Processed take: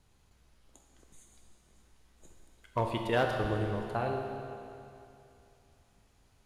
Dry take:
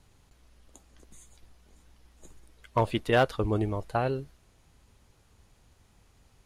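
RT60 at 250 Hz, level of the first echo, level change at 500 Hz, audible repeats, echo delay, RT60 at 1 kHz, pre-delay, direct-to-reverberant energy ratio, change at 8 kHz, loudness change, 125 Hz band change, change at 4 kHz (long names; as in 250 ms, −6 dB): 2.7 s, no echo audible, −4.0 dB, no echo audible, no echo audible, 2.7 s, 22 ms, 2.0 dB, −4.0 dB, −5.0 dB, −4.5 dB, −4.0 dB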